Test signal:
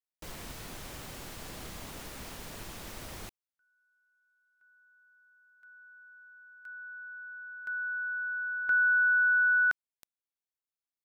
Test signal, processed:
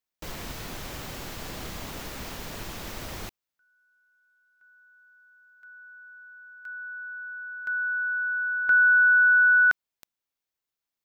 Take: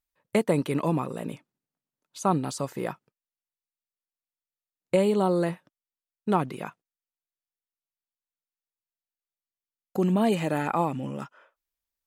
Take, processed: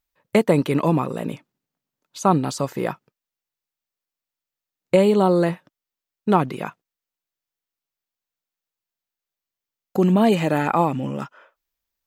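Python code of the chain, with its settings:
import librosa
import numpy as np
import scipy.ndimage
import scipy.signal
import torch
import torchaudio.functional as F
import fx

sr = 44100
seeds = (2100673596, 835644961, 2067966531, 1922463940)

y = fx.peak_eq(x, sr, hz=9500.0, db=-6.0, octaves=0.51)
y = F.gain(torch.from_numpy(y), 6.5).numpy()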